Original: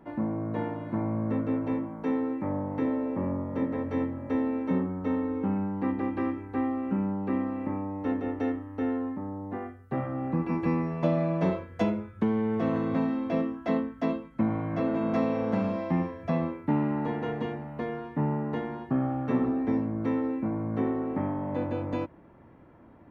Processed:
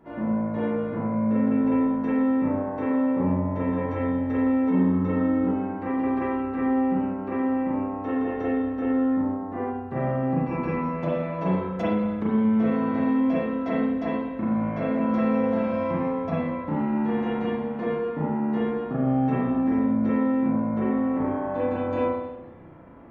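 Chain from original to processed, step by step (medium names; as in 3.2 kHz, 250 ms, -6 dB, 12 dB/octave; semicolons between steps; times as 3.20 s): compression, threshold -27 dBFS, peak gain reduction 7.5 dB; spring tank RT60 1.1 s, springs 32/38 ms, chirp 75 ms, DRR -8 dB; trim -2 dB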